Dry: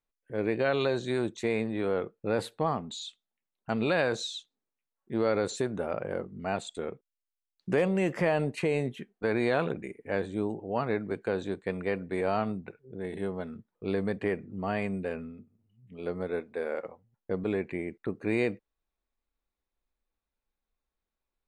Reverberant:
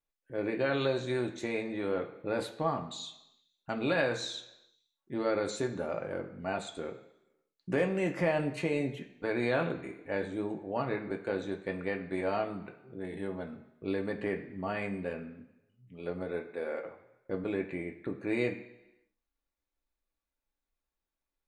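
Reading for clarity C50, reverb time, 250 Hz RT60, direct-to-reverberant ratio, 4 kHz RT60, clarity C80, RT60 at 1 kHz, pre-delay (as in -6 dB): 11.0 dB, 1.0 s, 0.95 s, 2.5 dB, 0.95 s, 13.5 dB, 1.0 s, 3 ms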